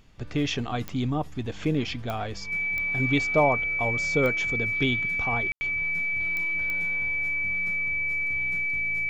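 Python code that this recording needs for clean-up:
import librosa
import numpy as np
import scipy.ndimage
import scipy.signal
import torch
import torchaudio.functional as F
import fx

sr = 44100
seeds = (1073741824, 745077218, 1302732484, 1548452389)

y = fx.fix_declick_ar(x, sr, threshold=10.0)
y = fx.notch(y, sr, hz=2300.0, q=30.0)
y = fx.fix_ambience(y, sr, seeds[0], print_start_s=0.0, print_end_s=0.5, start_s=5.52, end_s=5.61)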